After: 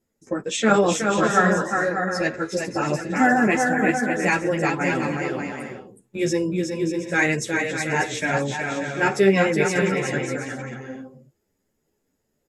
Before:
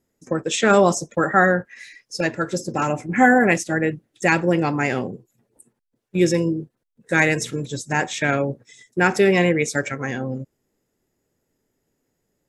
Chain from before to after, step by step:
on a send: bouncing-ball delay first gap 370 ms, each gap 0.6×, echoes 5
on the sum: string-ensemble chorus

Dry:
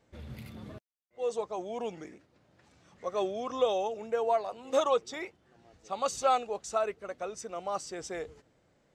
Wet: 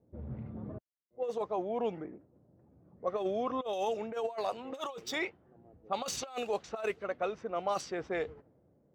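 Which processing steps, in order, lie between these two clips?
running median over 5 samples
dynamic equaliser 3,000 Hz, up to +3 dB, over −48 dBFS, Q 1.6
high-pass filter 62 Hz
high-shelf EQ 2,100 Hz −8.5 dB, from 0:03.73 +3.5 dB
low-pass that shuts in the quiet parts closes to 440 Hz, open at −28 dBFS
compressor whose output falls as the input rises −32 dBFS, ratio −0.5

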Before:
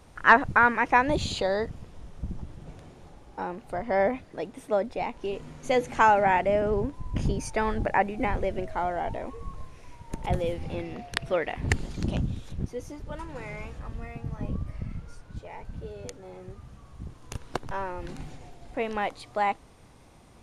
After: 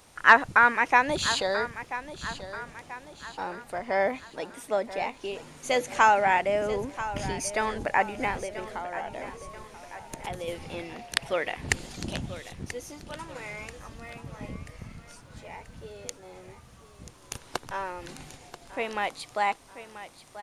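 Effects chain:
spectral tilt +2.5 dB per octave
0:08.37–0:10.48: downward compressor, threshold −32 dBFS, peak gain reduction 7 dB
repeating echo 985 ms, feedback 46%, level −13.5 dB

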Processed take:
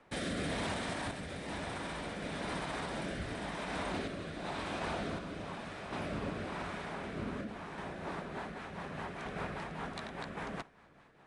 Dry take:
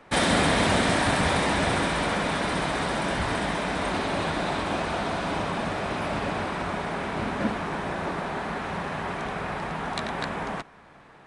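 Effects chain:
rotating-speaker cabinet horn 1 Hz, later 5 Hz, at 0:07.59
brickwall limiter −20.5 dBFS, peak gain reduction 9.5 dB
sample-and-hold tremolo 2.7 Hz
level −6 dB

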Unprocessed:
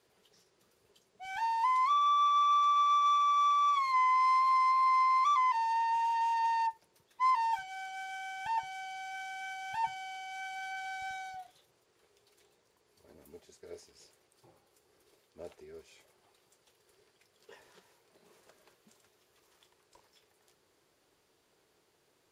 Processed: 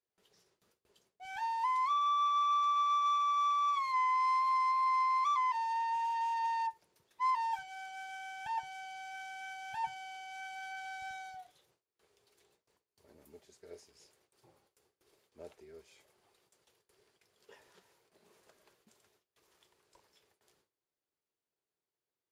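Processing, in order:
noise gate with hold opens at −58 dBFS
level −3.5 dB

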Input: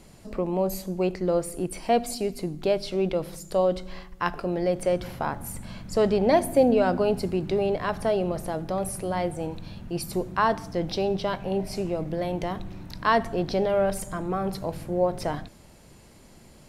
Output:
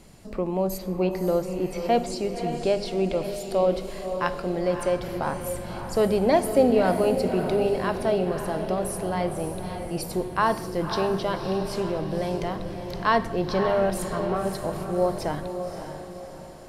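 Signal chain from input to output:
0:00.77–0:02.84: low-pass filter 5,100 Hz → 10,000 Hz 24 dB per octave
feedback delay with all-pass diffusion 556 ms, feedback 46%, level −7.5 dB
convolution reverb RT60 0.85 s, pre-delay 23 ms, DRR 15 dB

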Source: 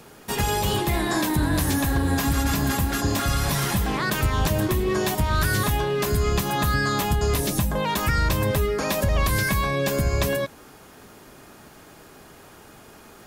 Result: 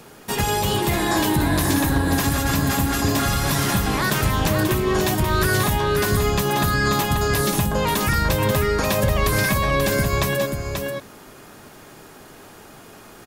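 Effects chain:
parametric band 62 Hz −12 dB 0.29 octaves
on a send: single-tap delay 535 ms −5.5 dB
on the sum: level +2.5 dB

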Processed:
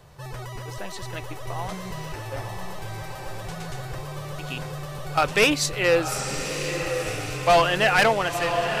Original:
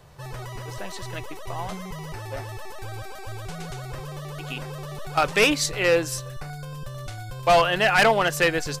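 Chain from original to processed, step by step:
fade-out on the ending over 0.87 s
feedback delay with all-pass diffusion 977 ms, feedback 53%, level −6 dB
healed spectral selection 0:06.16–0:06.61, 290–9,100 Hz both

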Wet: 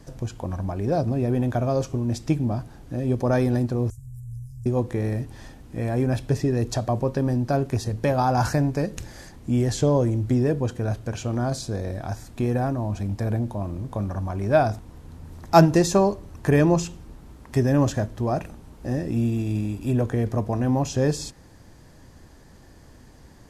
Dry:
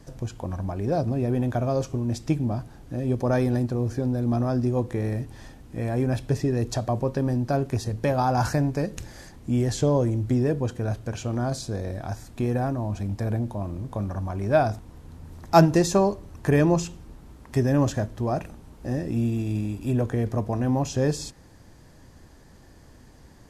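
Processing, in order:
0:03.90–0:04.66: Chebyshev band-stop filter 100–7,400 Hz, order 4
level +1.5 dB

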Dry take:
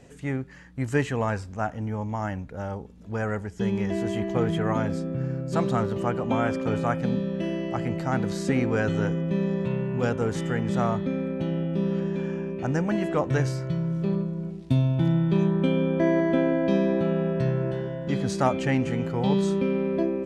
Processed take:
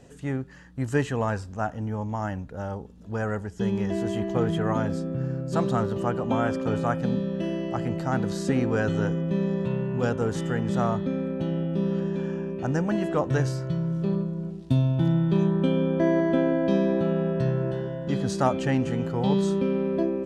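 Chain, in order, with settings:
parametric band 2,200 Hz −8 dB 0.29 octaves

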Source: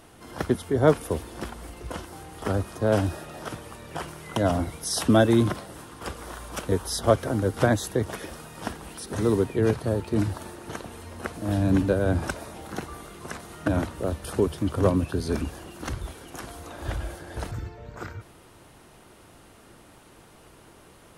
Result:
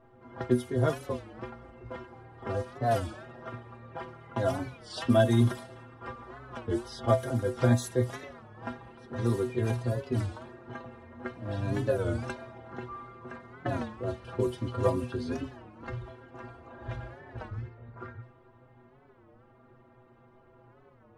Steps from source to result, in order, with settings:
stiff-string resonator 120 Hz, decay 0.25 s, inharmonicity 0.008
low-pass that shuts in the quiet parts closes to 1,200 Hz, open at −28 dBFS
wow of a warped record 33 1/3 rpm, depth 160 cents
level +4.5 dB

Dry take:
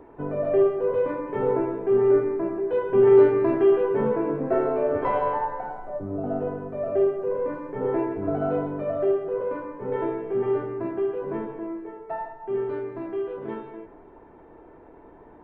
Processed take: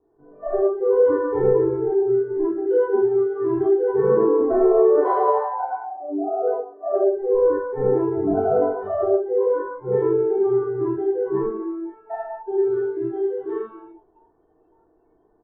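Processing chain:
comb filter 2.7 ms, depth 42%
automatic gain control gain up to 4 dB
0:04.94–0:06.94: elliptic high-pass filter 280 Hz, stop band 40 dB
downward compressor 12 to 1, threshold −17 dBFS, peak gain reduction 11.5 dB
convolution reverb RT60 0.75 s, pre-delay 18 ms, DRR −5.5 dB
noise reduction from a noise print of the clip's start 22 dB
moving average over 18 samples
level −1.5 dB

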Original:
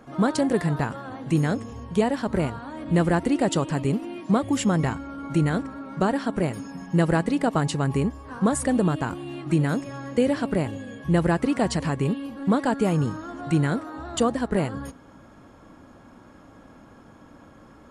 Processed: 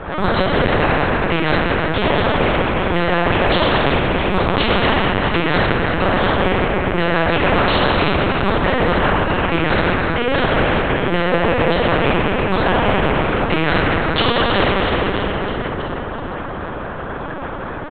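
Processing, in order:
reverb reduction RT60 1.6 s
high-pass filter 210 Hz 12 dB per octave
high-shelf EQ 2,700 Hz −5 dB
harmonic and percussive parts rebalanced percussive +6 dB
0:11.26–0:11.85: parametric band 480 Hz +14.5 dB 0.57 octaves
downward compressor 4 to 1, threshold −24 dBFS, peak gain reduction 15 dB
repeating echo 325 ms, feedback 55%, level −10 dB
convolution reverb RT60 2.8 s, pre-delay 5 ms, DRR −8.5 dB
linear-prediction vocoder at 8 kHz pitch kept
every bin compressed towards the loudest bin 2 to 1
level +3.5 dB

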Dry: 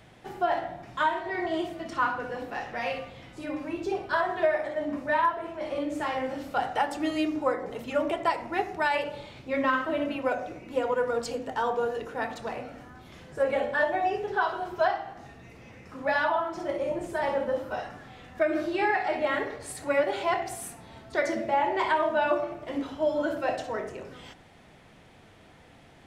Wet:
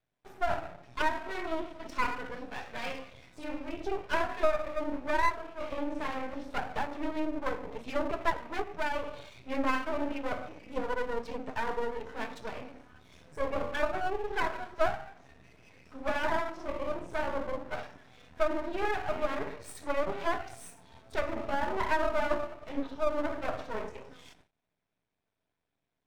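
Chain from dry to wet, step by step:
noise reduction from a noise print of the clip's start 7 dB
treble cut that deepens with the level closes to 1,400 Hz, closed at −24 dBFS
noise gate with hold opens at −49 dBFS
EQ curve with evenly spaced ripples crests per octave 1.6, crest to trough 6 dB
half-wave rectification

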